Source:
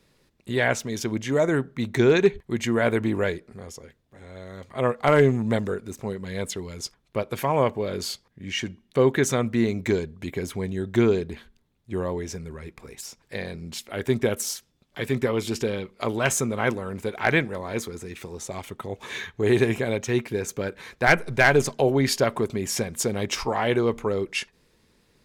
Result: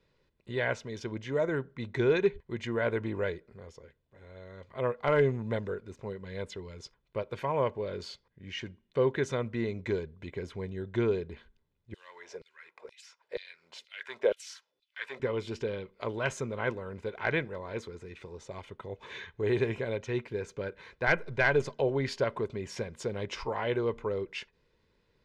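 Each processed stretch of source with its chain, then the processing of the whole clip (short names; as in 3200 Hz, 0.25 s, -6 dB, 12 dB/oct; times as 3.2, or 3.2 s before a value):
11.94–15.2 block floating point 7-bit + LFO high-pass saw down 2.1 Hz 390–4300 Hz + low shelf 100 Hz +9.5 dB
whole clip: LPF 3900 Hz 12 dB/oct; comb 2 ms, depth 37%; gain -8.5 dB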